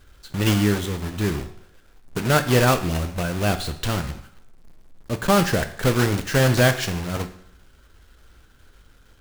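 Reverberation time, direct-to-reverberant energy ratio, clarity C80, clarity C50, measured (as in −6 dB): 0.70 s, 8.5 dB, 15.5 dB, 12.5 dB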